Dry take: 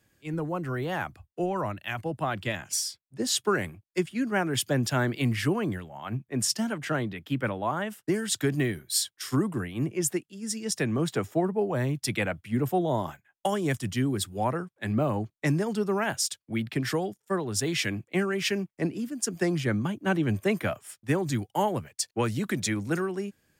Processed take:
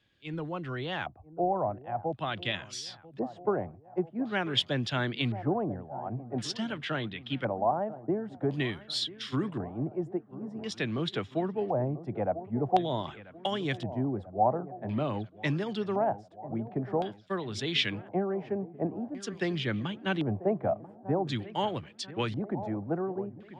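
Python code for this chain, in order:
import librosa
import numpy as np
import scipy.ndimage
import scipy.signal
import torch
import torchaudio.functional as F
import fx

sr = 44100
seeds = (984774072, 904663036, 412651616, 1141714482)

y = fx.echo_wet_lowpass(x, sr, ms=990, feedback_pct=56, hz=1600.0, wet_db=-16)
y = fx.filter_lfo_lowpass(y, sr, shape='square', hz=0.47, low_hz=740.0, high_hz=3500.0, q=3.9)
y = y * librosa.db_to_amplitude(-5.0)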